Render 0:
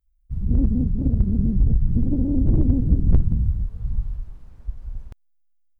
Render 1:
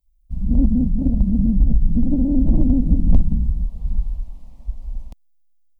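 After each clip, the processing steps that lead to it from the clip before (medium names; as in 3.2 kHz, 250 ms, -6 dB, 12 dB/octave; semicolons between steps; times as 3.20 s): static phaser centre 400 Hz, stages 6; trim +5.5 dB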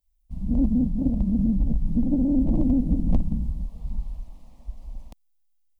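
bass shelf 160 Hz -9 dB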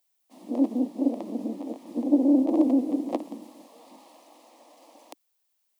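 steep high-pass 300 Hz 48 dB/octave; trim +9 dB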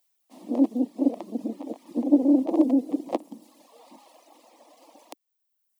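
reverb removal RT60 1.2 s; trim +2.5 dB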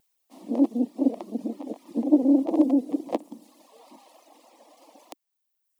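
vibrato 3.4 Hz 58 cents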